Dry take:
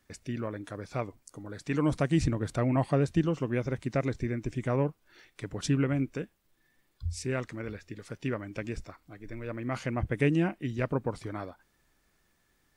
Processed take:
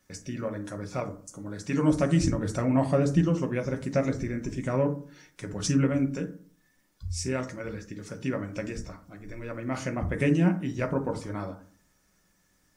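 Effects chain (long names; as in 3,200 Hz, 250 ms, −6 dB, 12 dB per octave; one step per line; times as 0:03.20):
on a send: high shelf with overshoot 4,400 Hz +8.5 dB, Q 3 + convolution reverb RT60 0.45 s, pre-delay 3 ms, DRR 3.5 dB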